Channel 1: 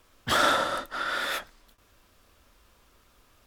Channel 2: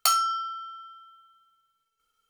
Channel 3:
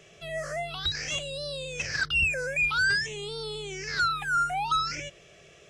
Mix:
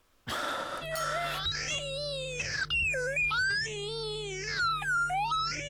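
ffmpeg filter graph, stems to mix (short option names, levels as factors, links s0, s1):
-filter_complex "[0:a]alimiter=limit=0.133:level=0:latency=1:release=117,volume=0.473[s0];[1:a]adelay=900,volume=0.335[s1];[2:a]adelay=600,volume=1[s2];[s0][s1][s2]amix=inputs=3:normalize=0,alimiter=limit=0.0708:level=0:latency=1:release=62"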